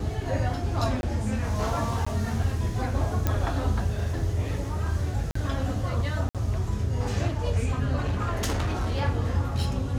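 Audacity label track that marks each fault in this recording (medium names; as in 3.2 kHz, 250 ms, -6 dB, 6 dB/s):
1.010000	1.030000	dropout 21 ms
2.050000	2.060000	dropout 15 ms
3.270000	3.270000	pop -11 dBFS
5.310000	5.350000	dropout 44 ms
6.290000	6.350000	dropout 57 ms
7.950000	9.020000	clipped -22.5 dBFS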